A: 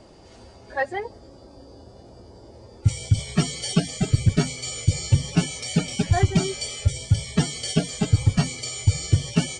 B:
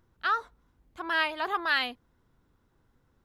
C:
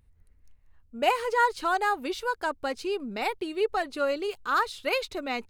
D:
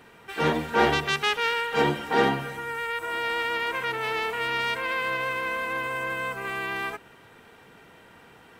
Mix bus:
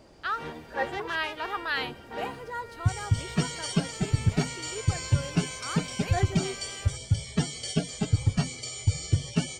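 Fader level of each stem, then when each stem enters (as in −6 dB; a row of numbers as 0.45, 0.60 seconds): −5.5, −3.5, −13.0, −15.5 decibels; 0.00, 0.00, 1.15, 0.00 seconds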